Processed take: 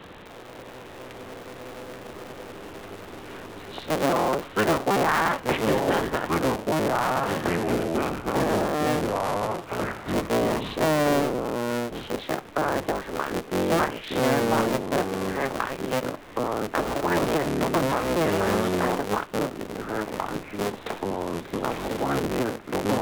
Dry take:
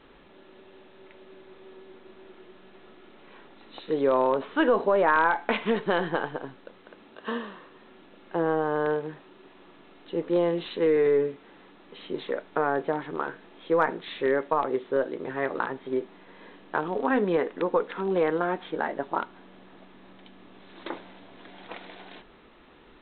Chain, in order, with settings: cycle switcher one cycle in 3, inverted; ever faster or slower copies 540 ms, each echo -4 st, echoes 2; three bands compressed up and down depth 40%

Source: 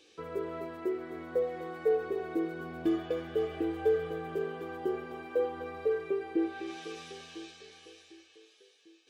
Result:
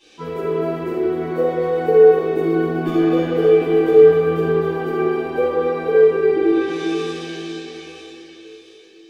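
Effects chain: tape echo 147 ms, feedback 76%, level -10 dB, low-pass 1.2 kHz; simulated room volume 950 m³, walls mixed, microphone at 9.6 m; trim -1 dB

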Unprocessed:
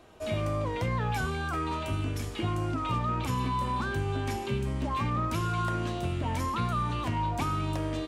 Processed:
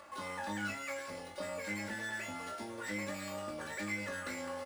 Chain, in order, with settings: sorted samples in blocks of 8 samples; upward compressor, threshold -37 dBFS; valve stage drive 24 dB, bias 0.75; low-pass 1.8 kHz 6 dB/octave; bass shelf 260 Hz -10.5 dB; speed mistake 45 rpm record played at 78 rpm; high-pass 45 Hz; comb 3.5 ms, depth 92%; flutter echo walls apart 3.4 m, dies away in 0.23 s; trim -4.5 dB

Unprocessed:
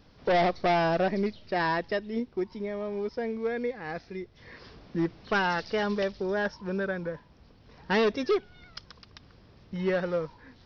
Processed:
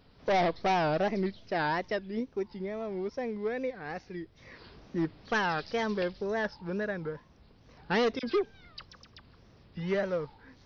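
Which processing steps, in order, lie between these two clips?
wow and flutter 150 cents; 8.19–10.03 s: phase dispersion lows, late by 42 ms, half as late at 1.9 kHz; trim -2.5 dB

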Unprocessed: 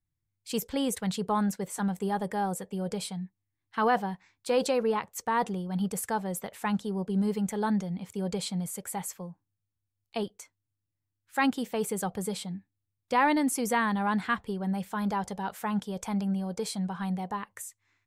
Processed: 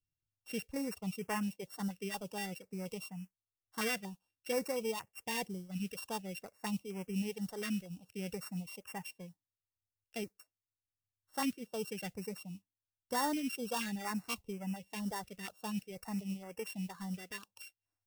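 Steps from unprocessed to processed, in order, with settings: sorted samples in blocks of 16 samples; reverb removal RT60 1.1 s; modulation noise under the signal 23 dB; step-sequenced notch 4.2 Hz 860–3900 Hz; trim -7.5 dB

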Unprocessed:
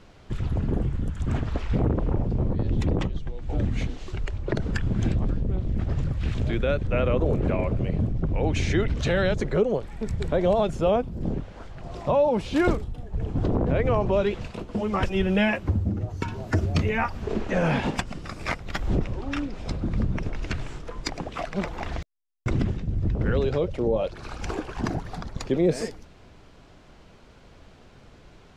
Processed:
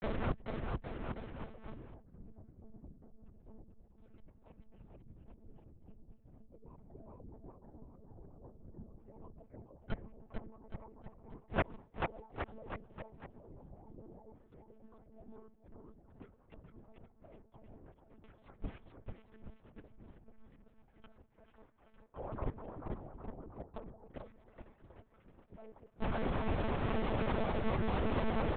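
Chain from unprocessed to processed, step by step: low-pass that closes with the level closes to 430 Hz, closed at -19.5 dBFS; band noise 230–770 Hz -58 dBFS; low-pass that closes with the level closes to 1 kHz, closed at -19.5 dBFS; peaking EQ 370 Hz +3.5 dB 0.5 oct; hum notches 50/100 Hz; compression 2.5:1, threshold -34 dBFS, peak gain reduction 12 dB; inverted gate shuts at -32 dBFS, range -33 dB; granulator 100 ms, grains 20 per s, spray 25 ms, pitch spread up and down by 12 st; bouncing-ball echo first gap 440 ms, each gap 0.85×, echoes 5; expander -59 dBFS; distance through air 210 m; monotone LPC vocoder at 8 kHz 220 Hz; trim +16 dB

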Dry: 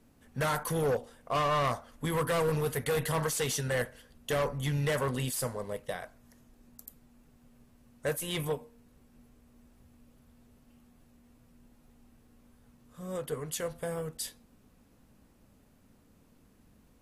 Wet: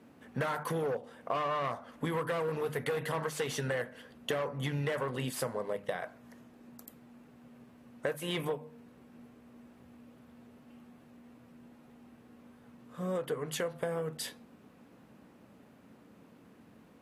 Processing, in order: high-pass 170 Hz 12 dB/octave; tone controls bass +1 dB, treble -12 dB; hum notches 50/100/150/200/250 Hz; compression 6:1, threshold -39 dBFS, peak gain reduction 13 dB; trim +8 dB

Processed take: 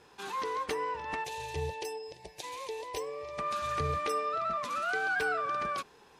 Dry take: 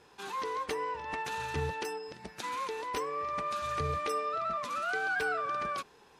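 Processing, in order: 1.24–3.39 s: static phaser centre 560 Hz, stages 4; trim +1 dB

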